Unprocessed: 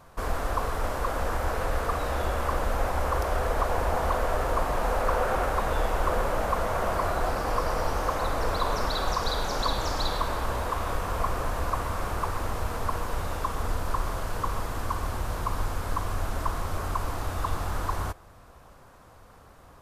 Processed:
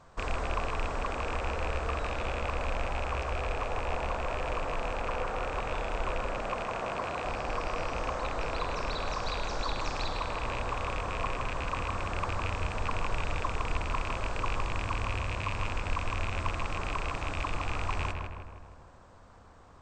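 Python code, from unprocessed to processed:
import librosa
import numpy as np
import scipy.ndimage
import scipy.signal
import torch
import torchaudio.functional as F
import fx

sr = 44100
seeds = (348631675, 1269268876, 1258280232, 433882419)

p1 = fx.rattle_buzz(x, sr, strikes_db=-30.0, level_db=-18.0)
p2 = fx.brickwall_lowpass(p1, sr, high_hz=8600.0)
p3 = fx.rider(p2, sr, range_db=10, speed_s=0.5)
p4 = fx.highpass(p3, sr, hz=100.0, slope=12, at=(6.31, 7.25))
p5 = p4 + fx.echo_filtered(p4, sr, ms=158, feedback_pct=58, hz=2300.0, wet_db=-3.5, dry=0)
y = F.gain(torch.from_numpy(p5), -7.0).numpy()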